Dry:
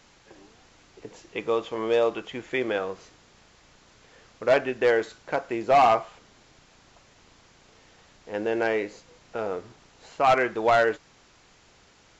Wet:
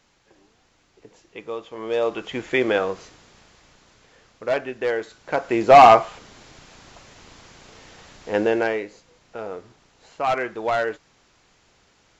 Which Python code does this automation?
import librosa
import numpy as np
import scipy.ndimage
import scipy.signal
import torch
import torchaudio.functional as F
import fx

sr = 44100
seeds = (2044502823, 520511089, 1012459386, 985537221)

y = fx.gain(x, sr, db=fx.line((1.69, -6.0), (2.37, 6.5), (2.89, 6.5), (4.46, -2.5), (5.06, -2.5), (5.6, 9.0), (8.39, 9.0), (8.86, -2.5)))